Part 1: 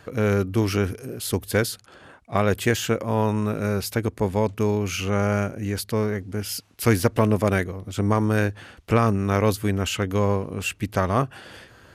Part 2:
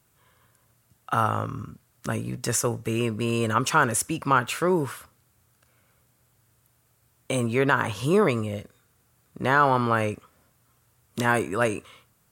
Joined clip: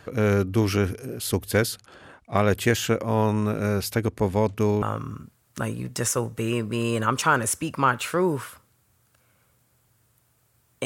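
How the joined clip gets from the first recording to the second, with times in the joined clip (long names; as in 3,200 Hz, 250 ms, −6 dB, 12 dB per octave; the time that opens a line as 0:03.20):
part 1
0:04.82: continue with part 2 from 0:01.30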